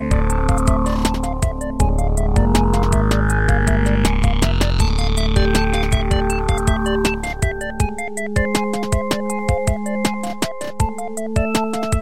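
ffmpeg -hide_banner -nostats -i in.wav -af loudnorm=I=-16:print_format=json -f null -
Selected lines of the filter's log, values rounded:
"input_i" : "-19.6",
"input_tp" : "-1.6",
"input_lra" : "3.9",
"input_thresh" : "-29.6",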